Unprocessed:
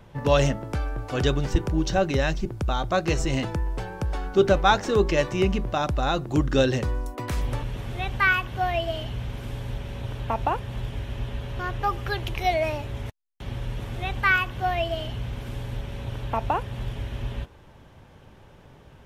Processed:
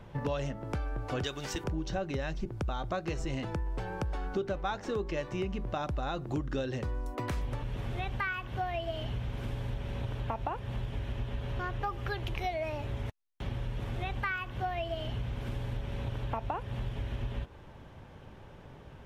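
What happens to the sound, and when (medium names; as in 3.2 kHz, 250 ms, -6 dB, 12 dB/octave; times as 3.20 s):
1.24–1.64 s: tilt EQ +3.5 dB/octave
whole clip: compression 6:1, threshold -31 dBFS; treble shelf 4.9 kHz -7.5 dB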